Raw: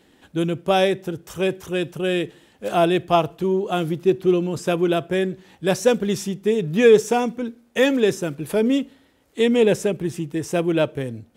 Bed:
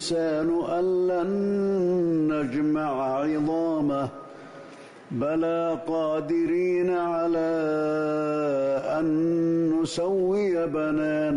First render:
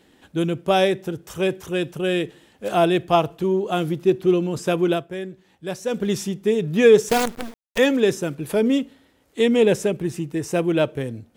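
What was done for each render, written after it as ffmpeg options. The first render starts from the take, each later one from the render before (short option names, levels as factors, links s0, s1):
-filter_complex "[0:a]asettb=1/sr,asplit=3[s0][s1][s2];[s0]atrim=end=7.094[s3];[s1]atrim=start=7.09:end=7.78,asetpts=PTS-STARTPTS,afade=t=in:d=0.004:c=qsin,afade=t=out:st=0.686:d=0.004:c=qsin,acrusher=bits=4:dc=4:mix=0:aa=0.000001[s4];[s2]atrim=start=7.776[s5];[s3][s4]acrossfade=d=0.004:c1=hsin:c2=qsin[s6];[s6][s5]acrossfade=d=0.004:c1=qsin:c2=hsin,asettb=1/sr,asplit=3[s7][s8][s9];[s7]atrim=end=10.034[s10];[s8]atrim=start=10.03:end=10.63,asetpts=PTS-STARTPTS,afade=t=in:d=0.004:c=qsin,afade=t=out:st=0.596:d=0.004:c=qsin,bandreject=f=3300:w=12[s11];[s9]atrim=start=10.626[s12];[s10][s11]acrossfade=d=0.004:c1=hsin:c2=qsin[s13];[s13][s12]acrossfade=d=0.004:c1=qsin:c2=hsin,asplit=3[s14][s15][s16];[s14]atrim=end=5.05,asetpts=PTS-STARTPTS,afade=t=out:st=4.92:d=0.13:silence=0.354813[s17];[s15]atrim=start=5.05:end=5.89,asetpts=PTS-STARTPTS,volume=0.355[s18];[s16]atrim=start=5.89,asetpts=PTS-STARTPTS,afade=t=in:d=0.13:silence=0.354813[s19];[s17][s18][s19]concat=n=3:v=0:a=1"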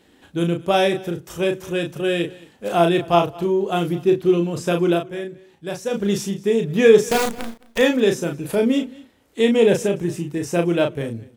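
-filter_complex "[0:a]asplit=2[s0][s1];[s1]adelay=35,volume=0.562[s2];[s0][s2]amix=inputs=2:normalize=0,aecho=1:1:218:0.0794"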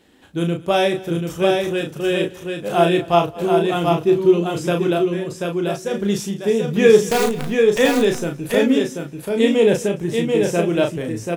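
-filter_complex "[0:a]asplit=2[s0][s1];[s1]adelay=19,volume=0.237[s2];[s0][s2]amix=inputs=2:normalize=0,aecho=1:1:737:0.631"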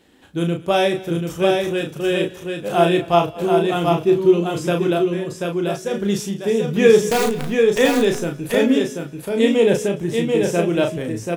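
-af "bandreject=f=210.9:t=h:w=4,bandreject=f=421.8:t=h:w=4,bandreject=f=632.7:t=h:w=4,bandreject=f=843.6:t=h:w=4,bandreject=f=1054.5:t=h:w=4,bandreject=f=1265.4:t=h:w=4,bandreject=f=1476.3:t=h:w=4,bandreject=f=1687.2:t=h:w=4,bandreject=f=1898.1:t=h:w=4,bandreject=f=2109:t=h:w=4,bandreject=f=2319.9:t=h:w=4,bandreject=f=2530.8:t=h:w=4,bandreject=f=2741.7:t=h:w=4,bandreject=f=2952.6:t=h:w=4,bandreject=f=3163.5:t=h:w=4,bandreject=f=3374.4:t=h:w=4,bandreject=f=3585.3:t=h:w=4,bandreject=f=3796.2:t=h:w=4,bandreject=f=4007.1:t=h:w=4,bandreject=f=4218:t=h:w=4,bandreject=f=4428.9:t=h:w=4,bandreject=f=4639.8:t=h:w=4,bandreject=f=4850.7:t=h:w=4,bandreject=f=5061.6:t=h:w=4,bandreject=f=5272.5:t=h:w=4,bandreject=f=5483.4:t=h:w=4,bandreject=f=5694.3:t=h:w=4"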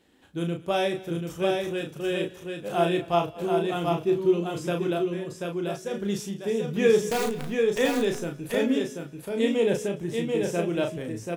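-af "volume=0.398"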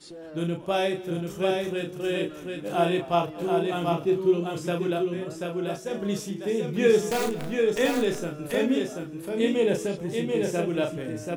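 -filter_complex "[1:a]volume=0.141[s0];[0:a][s0]amix=inputs=2:normalize=0"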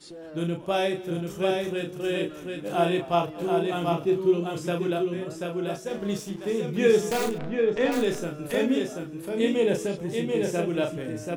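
-filter_complex "[0:a]asettb=1/sr,asplit=3[s0][s1][s2];[s0]atrim=end=5.894[s3];[s1]atrim=start=5.89:end=6.62,asetpts=PTS-STARTPTS,afade=t=in:d=0.004:c=qsin,afade=t=out:st=0.726:d=0.004:c=qsin,aeval=exprs='sgn(val(0))*max(abs(val(0))-0.00447,0)':c=same[s4];[s2]atrim=start=6.616[s5];[s3][s4]acrossfade=d=0.004:c1=hsin:c2=qsin[s6];[s6][s5]acrossfade=d=0.004:c1=qsin:c2=hsin,asettb=1/sr,asplit=3[s7][s8][s9];[s7]atrim=end=7.384[s10];[s8]atrim=start=7.38:end=7.92,asetpts=PTS-STARTPTS,afade=t=in:d=0.004:c=qsin,afade=t=out:st=0.536:d=0.004:c=qsin,adynamicsmooth=sensitivity=0.5:basefreq=3000[s11];[s9]atrim=start=7.916[s12];[s10][s11]acrossfade=d=0.004:c1=hsin:c2=qsin[s13];[s13][s12]acrossfade=d=0.004:c1=qsin:c2=hsin"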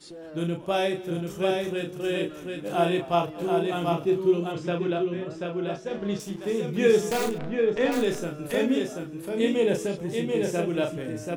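-filter_complex "[0:a]asettb=1/sr,asplit=3[s0][s1][s2];[s0]atrim=end=4.524[s3];[s1]atrim=start=4.52:end=6.2,asetpts=PTS-STARTPTS,afade=t=in:d=0.004:c=qsin,afade=t=out:st=1.676:d=0.004:c=qsin,lowpass=4500[s4];[s2]atrim=start=6.196[s5];[s3][s4]acrossfade=d=0.004:c1=hsin:c2=qsin[s6];[s6][s5]acrossfade=d=0.004:c1=qsin:c2=hsin"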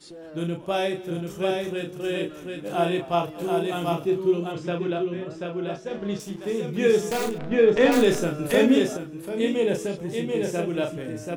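-filter_complex "[0:a]asettb=1/sr,asplit=3[s0][s1][s2];[s0]atrim=end=3.254[s3];[s1]atrim=start=3.25:end=4.07,asetpts=PTS-STARTPTS,afade=t=in:d=0.004:c=qsin,afade=t=out:st=0.816:d=0.004:c=qsin,highshelf=f=6500:g=7.5[s4];[s2]atrim=start=4.066[s5];[s3][s4]acrossfade=d=0.004:c1=hsin:c2=qsin[s6];[s6][s5]acrossfade=d=0.004:c1=qsin:c2=hsin,asettb=1/sr,asplit=3[s7][s8][s9];[s7]atrim=end=7.514[s10];[s8]atrim=start=7.51:end=8.97,asetpts=PTS-STARTPTS,afade=t=in:d=0.004:c=qsin,afade=t=out:st=1.456:d=0.004:c=qsin,acontrast=57[s11];[s9]atrim=start=8.966[s12];[s10][s11]acrossfade=d=0.004:c1=hsin:c2=qsin[s13];[s13][s12]acrossfade=d=0.004:c1=qsin:c2=hsin"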